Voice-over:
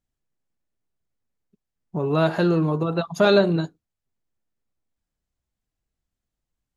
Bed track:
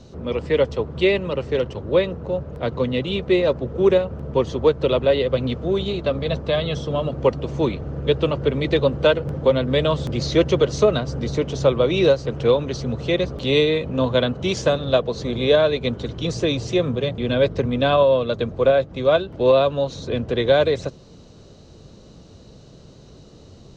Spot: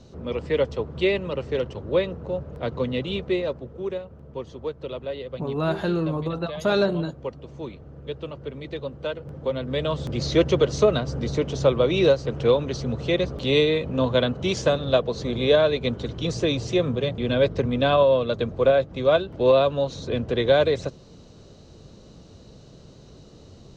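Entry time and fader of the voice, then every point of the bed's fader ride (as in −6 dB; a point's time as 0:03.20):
3.45 s, −4.5 dB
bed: 0:03.16 −4 dB
0:03.88 −14 dB
0:09.00 −14 dB
0:10.30 −2 dB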